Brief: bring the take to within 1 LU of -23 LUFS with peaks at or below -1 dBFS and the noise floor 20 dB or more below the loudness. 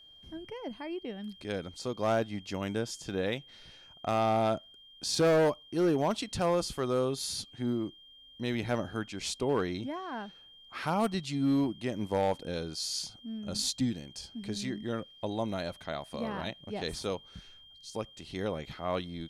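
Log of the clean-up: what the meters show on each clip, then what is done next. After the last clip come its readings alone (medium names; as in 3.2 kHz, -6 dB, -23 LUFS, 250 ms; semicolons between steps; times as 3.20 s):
clipped samples 0.7%; clipping level -21.0 dBFS; steady tone 3.2 kHz; tone level -53 dBFS; loudness -33.0 LUFS; peak level -21.0 dBFS; loudness target -23.0 LUFS
-> clip repair -21 dBFS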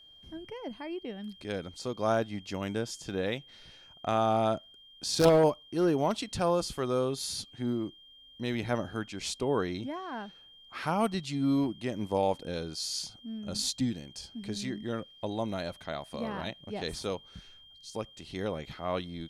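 clipped samples 0.0%; steady tone 3.2 kHz; tone level -53 dBFS
-> band-stop 3.2 kHz, Q 30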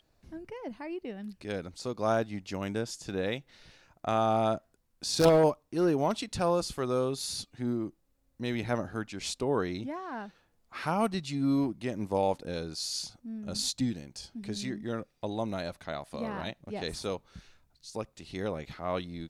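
steady tone not found; loudness -32.0 LUFS; peak level -12.0 dBFS; loudness target -23.0 LUFS
-> trim +9 dB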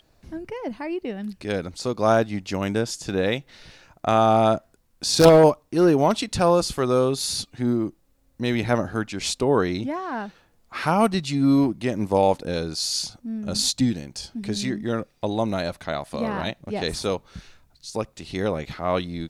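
loudness -23.0 LUFS; peak level -3.0 dBFS; noise floor -62 dBFS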